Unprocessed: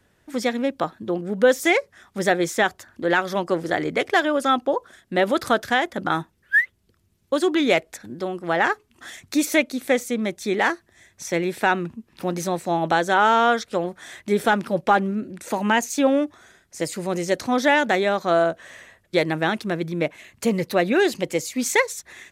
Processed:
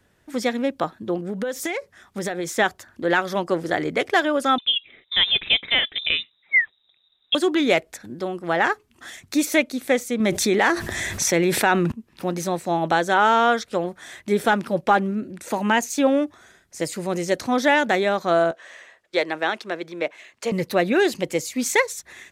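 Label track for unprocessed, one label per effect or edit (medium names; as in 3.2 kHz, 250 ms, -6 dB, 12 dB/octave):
1.150000	2.570000	compression 16:1, threshold -22 dBFS
4.580000	7.350000	frequency inversion carrier 3.8 kHz
10.200000	11.920000	level flattener amount 70%
18.510000	20.520000	three-band isolator lows -21 dB, under 340 Hz, highs -13 dB, over 7.9 kHz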